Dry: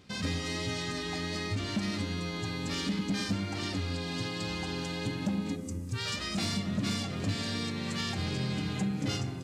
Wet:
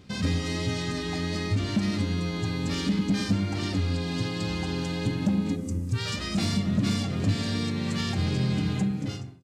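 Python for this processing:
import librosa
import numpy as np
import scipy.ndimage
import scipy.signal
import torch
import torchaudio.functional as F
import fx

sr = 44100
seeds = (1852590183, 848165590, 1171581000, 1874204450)

y = fx.fade_out_tail(x, sr, length_s=0.73)
y = fx.low_shelf(y, sr, hz=360.0, db=7.0)
y = y * librosa.db_to_amplitude(1.5)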